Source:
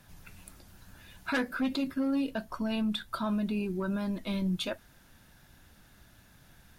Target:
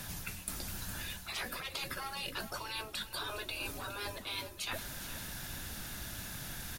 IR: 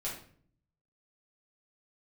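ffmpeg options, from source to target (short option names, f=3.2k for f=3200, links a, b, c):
-af "afftfilt=real='re*lt(hypot(re,im),0.0398)':imag='im*lt(hypot(re,im),0.0398)':win_size=1024:overlap=0.75,highshelf=f=2.9k:g=8.5,areverse,acompressor=threshold=-49dB:ratio=16,areverse,aecho=1:1:413|826|1239|1652|2065:0.211|0.101|0.0487|0.0234|0.0112,volume=12.5dB"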